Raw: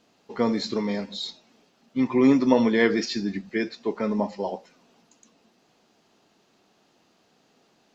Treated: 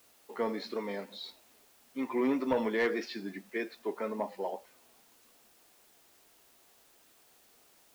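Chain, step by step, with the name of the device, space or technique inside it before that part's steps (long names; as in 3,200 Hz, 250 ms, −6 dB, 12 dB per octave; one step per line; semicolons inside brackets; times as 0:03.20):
tape answering machine (band-pass filter 360–3,000 Hz; soft clipping −15 dBFS, distortion −17 dB; tape wow and flutter; white noise bed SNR 27 dB)
level −5 dB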